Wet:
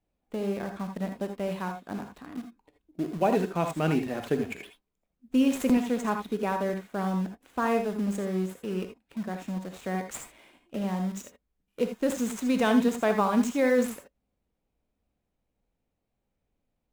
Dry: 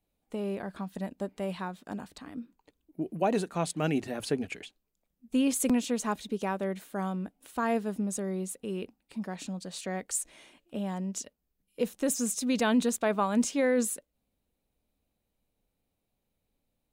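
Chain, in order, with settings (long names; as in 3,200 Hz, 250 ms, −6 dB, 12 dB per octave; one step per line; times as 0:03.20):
running median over 9 samples
in parallel at −10.5 dB: bit reduction 6 bits
on the sum: reverb whose tail is shaped and stops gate 100 ms rising, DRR 5.5 dB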